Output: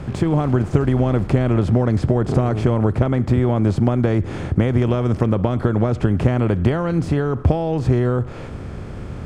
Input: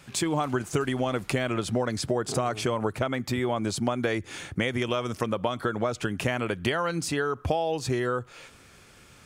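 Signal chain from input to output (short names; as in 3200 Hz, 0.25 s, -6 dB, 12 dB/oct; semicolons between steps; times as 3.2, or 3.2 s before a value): per-bin compression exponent 0.6; tilt -4.5 dB/oct; gain -1.5 dB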